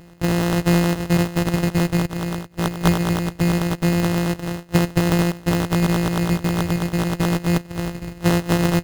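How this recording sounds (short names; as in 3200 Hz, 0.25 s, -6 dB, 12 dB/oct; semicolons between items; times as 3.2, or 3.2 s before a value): a buzz of ramps at a fixed pitch in blocks of 256 samples; phasing stages 2, 0.27 Hz, lowest notch 790–1700 Hz; aliases and images of a low sample rate 2300 Hz, jitter 0%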